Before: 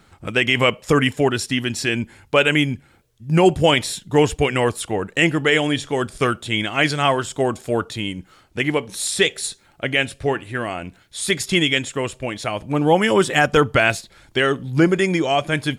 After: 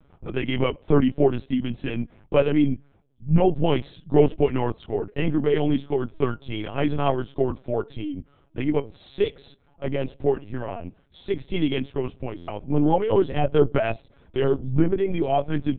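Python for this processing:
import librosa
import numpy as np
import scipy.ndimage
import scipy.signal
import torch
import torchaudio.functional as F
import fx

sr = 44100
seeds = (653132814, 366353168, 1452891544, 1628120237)

y = fx.peak_eq(x, sr, hz=1800.0, db=-12.0, octaves=1.6)
y = y + 0.81 * np.pad(y, (int(7.1 * sr / 1000.0), 0))[:len(y)]
y = fx.lpc_vocoder(y, sr, seeds[0], excitation='pitch_kept', order=10)
y = fx.air_absorb(y, sr, metres=370.0)
y = fx.buffer_glitch(y, sr, at_s=(12.37,), block=512, repeats=8)
y = F.gain(torch.from_numpy(y), -3.0).numpy()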